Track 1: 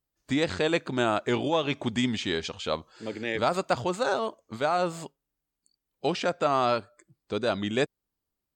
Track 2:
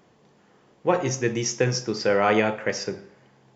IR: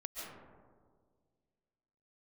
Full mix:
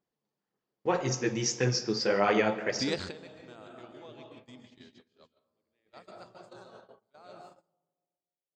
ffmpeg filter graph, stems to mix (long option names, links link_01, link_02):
-filter_complex "[0:a]adelay=2500,volume=-7dB,asplit=2[link_01][link_02];[link_02]volume=-16.5dB[link_03];[1:a]equalizer=frequency=100:width_type=o:width=0.3:gain=-7,flanger=delay=0.1:depth=9.3:regen=22:speed=1.8:shape=sinusoidal,volume=-3dB,asplit=3[link_04][link_05][link_06];[link_05]volume=-13dB[link_07];[link_06]apad=whole_len=487466[link_08];[link_01][link_08]sidechaingate=range=-33dB:threshold=-52dB:ratio=16:detection=peak[link_09];[2:a]atrim=start_sample=2205[link_10];[link_03][link_07]amix=inputs=2:normalize=0[link_11];[link_11][link_10]afir=irnorm=-1:irlink=0[link_12];[link_09][link_04][link_12]amix=inputs=3:normalize=0,agate=range=-24dB:threshold=-50dB:ratio=16:detection=peak,equalizer=frequency=4600:width=2.5:gain=6.5"